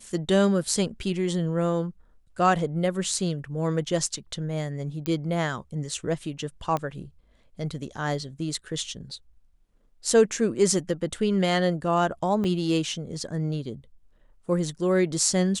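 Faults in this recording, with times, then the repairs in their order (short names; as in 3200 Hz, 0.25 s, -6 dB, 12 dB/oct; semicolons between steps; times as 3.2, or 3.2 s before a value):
5.06 pop -14 dBFS
6.77 pop -16 dBFS
12.44 gap 4.2 ms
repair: de-click; interpolate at 12.44, 4.2 ms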